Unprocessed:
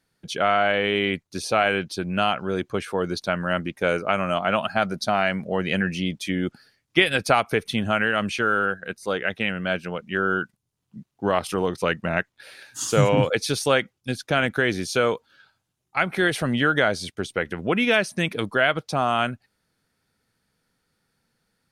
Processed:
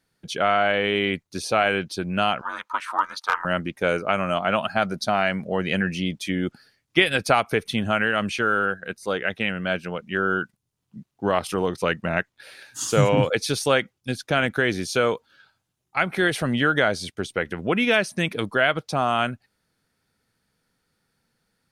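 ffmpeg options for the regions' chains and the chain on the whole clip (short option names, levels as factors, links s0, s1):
-filter_complex "[0:a]asettb=1/sr,asplit=3[s0][s1][s2];[s0]atrim=end=2.414[s3];[s1]atrim=start=2.41:end=3.45,asetpts=PTS-STARTPTS,afade=t=in:d=0.004:c=qsin,afade=t=out:st=1.036:d=0.004:c=qsin,highpass=f=1100:t=q:w=11,asoftclip=type=hard:threshold=0.355,aeval=exprs='val(0)*sin(2*PI*150*n/s)':c=same[s4];[s2]atrim=start=3.446[s5];[s3][s4]acrossfade=d=0.004:c1=hsin:c2=qsin[s6];[s6][s5]acrossfade=d=0.004:c1=qsin:c2=hsin"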